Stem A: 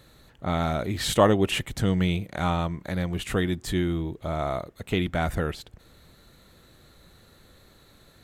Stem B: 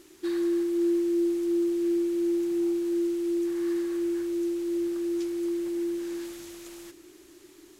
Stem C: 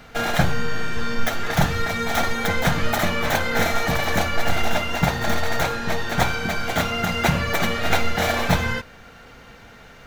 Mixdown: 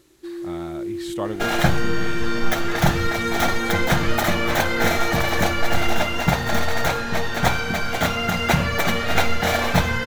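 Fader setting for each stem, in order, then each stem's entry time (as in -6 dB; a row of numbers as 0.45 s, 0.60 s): -10.0 dB, -4.5 dB, +1.0 dB; 0.00 s, 0.00 s, 1.25 s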